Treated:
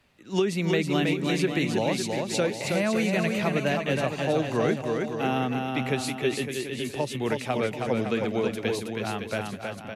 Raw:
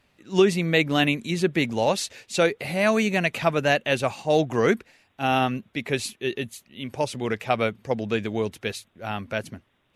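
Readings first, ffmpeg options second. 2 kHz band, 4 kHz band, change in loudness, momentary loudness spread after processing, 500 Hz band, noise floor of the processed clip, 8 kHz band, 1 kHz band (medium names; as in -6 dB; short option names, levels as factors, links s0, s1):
-4.0 dB, -3.0 dB, -2.5 dB, 6 LU, -2.5 dB, -40 dBFS, -1.0 dB, -4.0 dB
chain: -filter_complex "[0:a]acrossover=split=100|420[s0][s1][s2];[s0]acompressor=threshold=0.00224:ratio=4[s3];[s1]acompressor=threshold=0.0562:ratio=4[s4];[s2]acompressor=threshold=0.0355:ratio=4[s5];[s3][s4][s5]amix=inputs=3:normalize=0,aecho=1:1:320|560|740|875|976.2:0.631|0.398|0.251|0.158|0.1"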